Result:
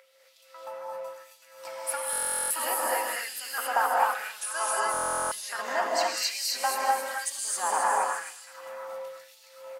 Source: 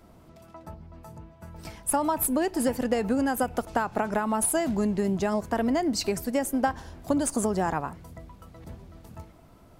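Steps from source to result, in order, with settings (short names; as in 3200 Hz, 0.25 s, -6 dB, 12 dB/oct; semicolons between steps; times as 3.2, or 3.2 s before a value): in parallel at -2.5 dB: compressor, threshold -38 dBFS, peak gain reduction 17.5 dB; on the sum: whine 530 Hz -28 dBFS; on a send: bouncing-ball echo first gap 0.27 s, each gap 0.75×, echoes 5; on the sum: LFO high-pass sine 1 Hz 860–4500 Hz; 4.4–4.86 speaker cabinet 410–9300 Hz, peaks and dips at 430 Hz +7 dB, 1200 Hz +4 dB, 2100 Hz -9 dB, 5600 Hz +7 dB; non-linear reverb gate 0.29 s rising, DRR -4 dB; stuck buffer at 2.11/4.92, samples 1024, times 16; gain -6 dB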